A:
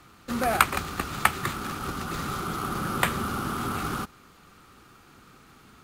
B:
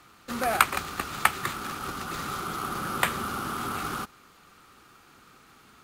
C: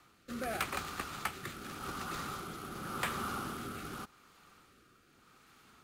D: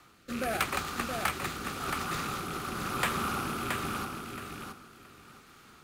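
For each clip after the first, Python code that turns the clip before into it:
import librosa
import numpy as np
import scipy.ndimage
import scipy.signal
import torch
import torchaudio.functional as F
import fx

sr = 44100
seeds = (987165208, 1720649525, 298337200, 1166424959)

y1 = fx.low_shelf(x, sr, hz=320.0, db=-7.5)
y2 = fx.rotary(y1, sr, hz=0.85)
y2 = 10.0 ** (-20.5 / 20.0) * np.tanh(y2 / 10.0 ** (-20.5 / 20.0))
y2 = y2 * 10.0 ** (-5.0 / 20.0)
y3 = fx.rattle_buzz(y2, sr, strikes_db=-44.0, level_db=-36.0)
y3 = fx.echo_feedback(y3, sr, ms=673, feedback_pct=20, wet_db=-5.0)
y3 = y3 * 10.0 ** (5.5 / 20.0)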